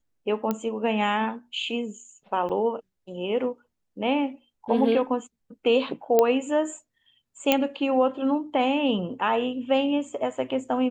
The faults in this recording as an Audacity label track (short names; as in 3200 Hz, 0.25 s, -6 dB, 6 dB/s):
0.510000	0.510000	pop -13 dBFS
2.490000	2.500000	gap 6.8 ms
6.190000	6.190000	pop -7 dBFS
7.520000	7.520000	pop -5 dBFS